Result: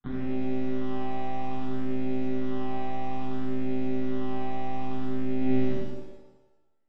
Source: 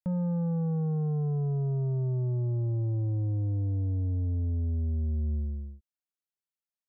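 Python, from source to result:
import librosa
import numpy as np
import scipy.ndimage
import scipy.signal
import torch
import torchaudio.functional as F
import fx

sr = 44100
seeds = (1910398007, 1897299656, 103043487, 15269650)

y = np.r_[np.sort(x[:len(x) // 64 * 64].reshape(-1, 64), axis=1).ravel(), x[len(x) // 64 * 64:]]
y = fx.lpc_monotone(y, sr, seeds[0], pitch_hz=130.0, order=8)
y = fx.small_body(y, sr, hz=(220.0, 780.0), ring_ms=35, db=16)
y = fx.over_compress(y, sr, threshold_db=-26.0, ratio=-0.5)
y = fx.phaser_stages(y, sr, stages=6, low_hz=340.0, high_hz=1100.0, hz=0.6, feedback_pct=25)
y = fx.rev_shimmer(y, sr, seeds[1], rt60_s=1.0, semitones=7, shimmer_db=-8, drr_db=-6.0)
y = y * 10.0 ** (-8.5 / 20.0)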